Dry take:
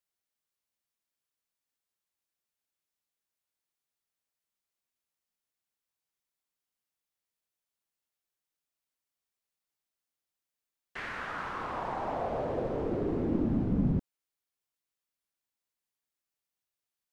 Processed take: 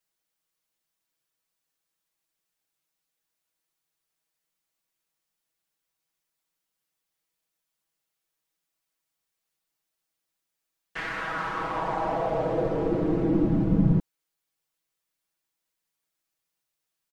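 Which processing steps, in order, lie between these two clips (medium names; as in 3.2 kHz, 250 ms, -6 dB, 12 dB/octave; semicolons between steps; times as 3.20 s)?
comb 6.2 ms, depth 94%; trim +3.5 dB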